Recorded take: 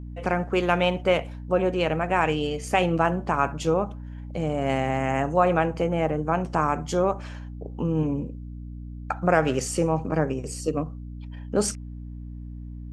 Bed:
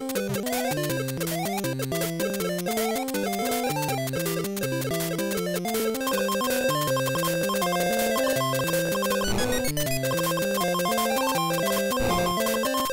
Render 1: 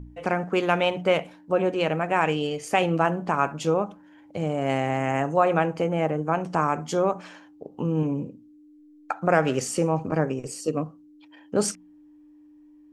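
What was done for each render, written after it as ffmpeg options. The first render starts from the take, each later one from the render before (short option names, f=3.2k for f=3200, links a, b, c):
-af "bandreject=f=60:t=h:w=4,bandreject=f=120:t=h:w=4,bandreject=f=180:t=h:w=4,bandreject=f=240:t=h:w=4"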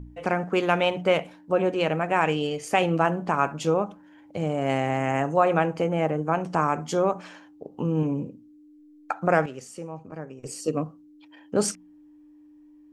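-filter_complex "[0:a]asplit=3[a][b][c];[a]atrim=end=9.46,asetpts=PTS-STARTPTS,afade=t=out:st=9.13:d=0.33:c=log:silence=0.211349[d];[b]atrim=start=9.46:end=10.43,asetpts=PTS-STARTPTS,volume=-13.5dB[e];[c]atrim=start=10.43,asetpts=PTS-STARTPTS,afade=t=in:d=0.33:c=log:silence=0.211349[f];[d][e][f]concat=n=3:v=0:a=1"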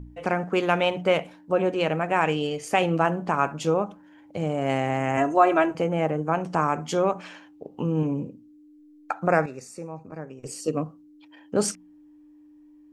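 -filter_complex "[0:a]asettb=1/sr,asplit=3[a][b][c];[a]atrim=end=5.174[d];[b]atrim=start=5.17:end=5.75,asetpts=PTS-STARTPTS,afade=t=in:d=0.004:c=qsin,afade=t=out:st=0.576:d=0.004:c=qsin,aecho=1:1:3:0.9,atrim=end_sample=25578[e];[c]atrim=start=5.746[f];[d][e]acrossfade=d=0.004:c1=hsin:c2=qsin[g];[g][f]acrossfade=d=0.004:c1=qsin:c2=hsin,asettb=1/sr,asplit=3[h][i][j];[h]atrim=end=6.844[k];[i]atrim=start=6.84:end=7.85,asetpts=PTS-STARTPTS,afade=t=in:d=0.004:c=qsin,afade=t=out:st=1.006:d=0.004:c=qsin,equalizer=f=2.6k:w=1.5:g=5[l];[j]atrim=start=7.846[m];[k][l]acrossfade=d=0.004:c1=hsin:c2=qsin[n];[n][m]acrossfade=d=0.004:c1=qsin:c2=hsin,asettb=1/sr,asplit=3[o][p][q];[o]atrim=end=9.304[r];[p]atrim=start=9.3:end=10.24,asetpts=PTS-STARTPTS,afade=t=in:d=0.004:c=qsin,afade=t=out:st=0.936:d=0.004:c=qsin,asuperstop=centerf=3100:order=12:qfactor=4.2[s];[q]atrim=start=10.236[t];[r][s]acrossfade=d=0.004:c1=hsin:c2=qsin[u];[u][t]acrossfade=d=0.004:c1=qsin:c2=hsin"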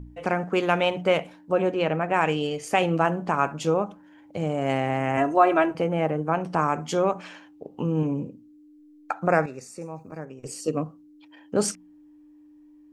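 -filter_complex "[0:a]asettb=1/sr,asplit=3[a][b][c];[a]atrim=end=1.724[d];[b]atrim=start=1.72:end=2.14,asetpts=PTS-STARTPTS,afade=t=in:d=0.004:c=qsin,afade=t=out:st=0.416:d=0.004:c=qsin,aemphasis=mode=reproduction:type=50fm[e];[c]atrim=start=2.136[f];[d][e]acrossfade=d=0.004:c1=hsin:c2=qsin[g];[g][f]acrossfade=d=0.004:c1=qsin:c2=hsin,asettb=1/sr,asplit=3[h][i][j];[h]atrim=end=4.724[k];[i]atrim=start=4.72:end=6.59,asetpts=PTS-STARTPTS,afade=t=in:d=0.004:c=qsin,afade=t=out:st=1.866:d=0.004:c=qsin,equalizer=f=7k:t=o:w=0.28:g=-9[l];[j]atrim=start=6.586[m];[k][l]acrossfade=d=0.004:c1=hsin:c2=qsin[n];[n][m]acrossfade=d=0.004:c1=qsin:c2=hsin,asettb=1/sr,asplit=3[o][p][q];[o]atrim=end=9.814[r];[p]atrim=start=9.81:end=10.25,asetpts=PTS-STARTPTS,afade=t=in:d=0.004:c=qsin,afade=t=out:st=0.436:d=0.004:c=qsin,highshelf=f=5.1k:g=10.5[s];[q]atrim=start=10.246[t];[r][s]acrossfade=d=0.004:c1=hsin:c2=qsin[u];[u][t]acrossfade=d=0.004:c1=qsin:c2=hsin"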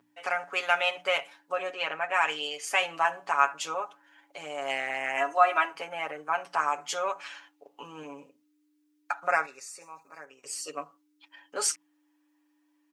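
-af "highpass=1.1k,aecho=1:1:7.1:0.77"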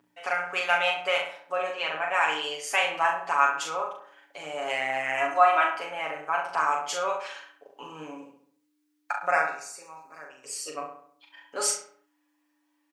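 -filter_complex "[0:a]asplit=2[a][b];[b]adelay=39,volume=-4dB[c];[a][c]amix=inputs=2:normalize=0,asplit=2[d][e];[e]adelay=68,lowpass=f=2.5k:p=1,volume=-6.5dB,asplit=2[f][g];[g]adelay=68,lowpass=f=2.5k:p=1,volume=0.48,asplit=2[h][i];[i]adelay=68,lowpass=f=2.5k:p=1,volume=0.48,asplit=2[j][k];[k]adelay=68,lowpass=f=2.5k:p=1,volume=0.48,asplit=2[l][m];[m]adelay=68,lowpass=f=2.5k:p=1,volume=0.48,asplit=2[n][o];[o]adelay=68,lowpass=f=2.5k:p=1,volume=0.48[p];[d][f][h][j][l][n][p]amix=inputs=7:normalize=0"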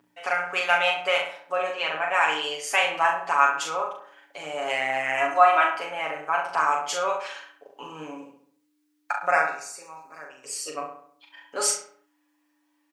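-af "volume=2.5dB"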